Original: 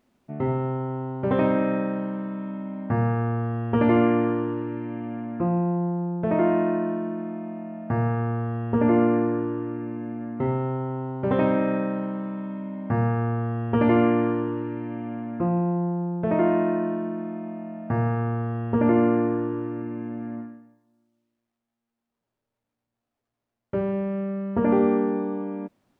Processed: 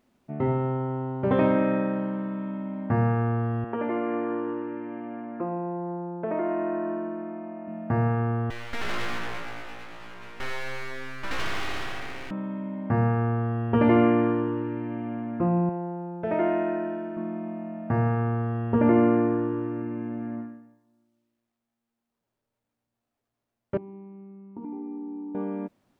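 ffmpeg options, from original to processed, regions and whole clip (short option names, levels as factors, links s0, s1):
-filter_complex "[0:a]asettb=1/sr,asplit=3[s0][s1][s2];[s0]atrim=end=3.644[s3];[s1]atrim=start=3.64:end=7.68,asetpts=PTS-STARTPTS,afade=t=in:d=0.004:c=qsin,afade=t=out:st=4.036:d=0.004:c=qsin,acompressor=threshold=0.0794:ratio=4:attack=3.2:release=140:knee=1:detection=peak,highpass=300,lowpass=2400[s4];[s2]atrim=start=7.676[s5];[s3][s4]acrossfade=d=0.004:c1=hsin:c2=qsin[s6];[s6][s5]acrossfade=d=0.004:c1=qsin:c2=hsin,asettb=1/sr,asplit=3[s7][s8][s9];[s7]atrim=end=8.504[s10];[s8]atrim=start=8.5:end=12.31,asetpts=PTS-STARTPTS,afade=t=in:d=0.004:c=qsin,afade=t=out:st=3.806:d=0.004:c=qsin,highpass=780,asplit=2[s11][s12];[s12]highpass=f=720:p=1,volume=6.31,asoftclip=type=tanh:threshold=0.126[s13];[s11][s13]amix=inputs=2:normalize=0,lowpass=f=2100:p=1,volume=0.501,aeval=exprs='abs(val(0))':c=same[s14];[s9]atrim=start=12.306[s15];[s10][s14]acrossfade=d=0.004:c1=hsin:c2=qsin[s16];[s16][s15]acrossfade=d=0.004:c1=qsin:c2=hsin,asettb=1/sr,asplit=3[s17][s18][s19];[s17]atrim=end=15.694[s20];[s18]atrim=start=15.69:end=17.17,asetpts=PTS-STARTPTS,afade=t=in:d=0.004:c=qsin,afade=t=out:st=1.476:d=0.004:c=qsin,equalizer=f=150:t=o:w=2.1:g=-10,bandreject=f=1100:w=7.3[s21];[s19]atrim=start=17.166[s22];[s20][s21]acrossfade=d=0.004:c1=hsin:c2=qsin[s23];[s23][s22]acrossfade=d=0.004:c1=qsin:c2=hsin,asettb=1/sr,asplit=3[s24][s25][s26];[s24]atrim=end=23.774[s27];[s25]atrim=start=23.77:end=25.35,asetpts=PTS-STARTPTS,afade=t=in:d=0.004:c=qsin,afade=t=out:st=1.576:d=0.004:c=qsin,asplit=3[s28][s29][s30];[s28]bandpass=f=300:t=q:w=8,volume=1[s31];[s29]bandpass=f=870:t=q:w=8,volume=0.501[s32];[s30]bandpass=f=2240:t=q:w=8,volume=0.355[s33];[s31][s32][s33]amix=inputs=3:normalize=0,acompressor=threshold=0.0224:ratio=5:attack=3.2:release=140:knee=1:detection=peak,equalizer=f=2300:t=o:w=1.5:g=-11[s34];[s26]atrim=start=25.346[s35];[s27][s34]acrossfade=d=0.004:c1=hsin:c2=qsin[s36];[s36][s35]acrossfade=d=0.004:c1=qsin:c2=hsin"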